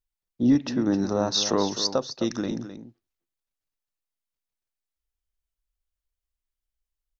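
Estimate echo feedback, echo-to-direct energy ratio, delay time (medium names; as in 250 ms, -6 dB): no regular repeats, -11.5 dB, 259 ms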